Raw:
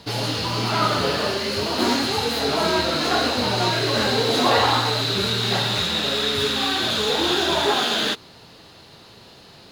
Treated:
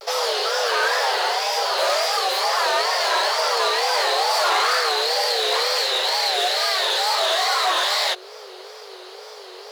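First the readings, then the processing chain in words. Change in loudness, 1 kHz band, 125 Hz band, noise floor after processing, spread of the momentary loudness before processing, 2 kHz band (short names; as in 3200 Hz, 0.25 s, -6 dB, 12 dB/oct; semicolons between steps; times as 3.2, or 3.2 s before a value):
+1.0 dB, +3.0 dB, under -40 dB, -40 dBFS, 4 LU, +2.5 dB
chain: in parallel at -1 dB: compressor, threshold -31 dBFS, peak gain reduction 15.5 dB; on the sum: overloaded stage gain 16 dB; hum 50 Hz, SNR 22 dB; frequency shift +350 Hz; wow and flutter 140 cents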